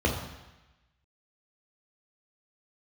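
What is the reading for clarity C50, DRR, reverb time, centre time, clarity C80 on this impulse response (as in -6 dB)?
5.5 dB, -1.0 dB, 1.0 s, 35 ms, 8.0 dB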